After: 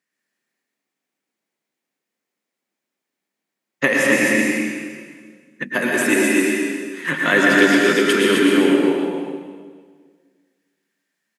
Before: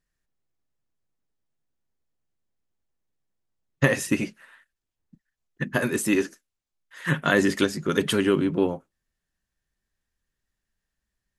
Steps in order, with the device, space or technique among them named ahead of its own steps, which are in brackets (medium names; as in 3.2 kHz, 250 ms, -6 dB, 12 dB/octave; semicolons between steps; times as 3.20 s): stadium PA (high-pass 210 Hz 24 dB/octave; peaking EQ 2.2 kHz +7 dB 0.54 oct; loudspeakers at several distances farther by 78 m -9 dB, 89 m -4 dB; reverberation RT60 1.7 s, pre-delay 98 ms, DRR -1.5 dB); trim +2 dB